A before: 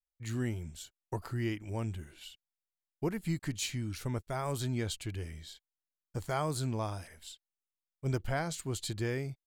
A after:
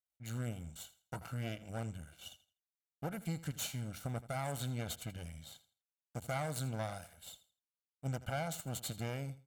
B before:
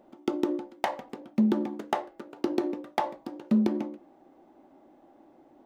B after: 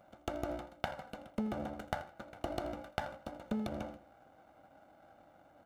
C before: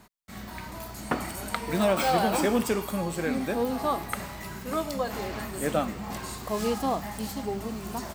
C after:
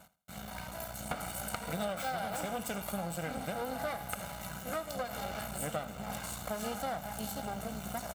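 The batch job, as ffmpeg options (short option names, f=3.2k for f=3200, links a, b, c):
-af "equalizer=f=100:t=o:w=0.33:g=-11,equalizer=f=250:t=o:w=0.33:g=-6,equalizer=f=400:t=o:w=0.33:g=-8,equalizer=f=2k:t=o:w=0.33:g=-12,equalizer=f=5k:t=o:w=0.33:g=-9,equalizer=f=16k:t=o:w=0.33:g=-9,aeval=exprs='max(val(0),0)':c=same,highpass=70,equalizer=f=13k:t=o:w=0.64:g=4,bandreject=f=900:w=12,aecho=1:1:1.4:0.58,acompressor=threshold=-35dB:ratio=6,aecho=1:1:82|164|246:0.15|0.0389|0.0101,volume=2dB"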